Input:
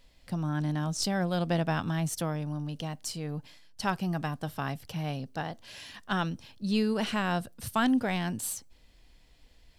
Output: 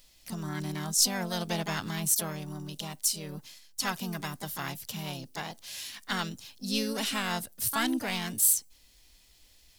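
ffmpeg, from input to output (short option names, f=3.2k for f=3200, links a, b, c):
-filter_complex "[0:a]asplit=2[a][b];[b]asetrate=55563,aresample=44100,atempo=0.793701,volume=-5dB[c];[a][c]amix=inputs=2:normalize=0,crystalizer=i=5.5:c=0,volume=-6.5dB"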